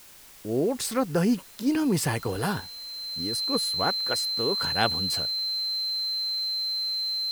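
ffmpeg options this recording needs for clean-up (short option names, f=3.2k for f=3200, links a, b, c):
-af "bandreject=f=4.1k:w=30,afwtdn=0.0032"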